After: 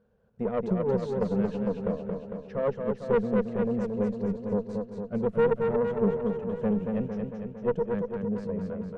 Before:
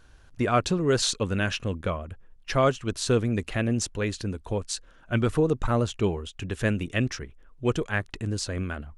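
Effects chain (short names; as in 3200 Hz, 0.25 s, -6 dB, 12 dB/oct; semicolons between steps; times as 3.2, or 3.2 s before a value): double band-pass 310 Hz, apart 1.2 oct; tube stage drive 26 dB, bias 0.55; warbling echo 0.227 s, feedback 64%, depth 70 cents, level -4.5 dB; gain +8 dB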